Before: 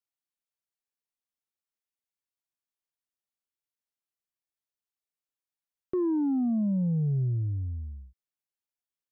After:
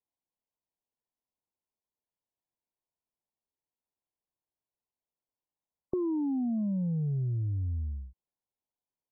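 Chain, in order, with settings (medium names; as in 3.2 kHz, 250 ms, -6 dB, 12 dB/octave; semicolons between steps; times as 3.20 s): compression, threshold -34 dBFS, peak gain reduction 8 dB; brick-wall FIR low-pass 1.1 kHz; trim +4.5 dB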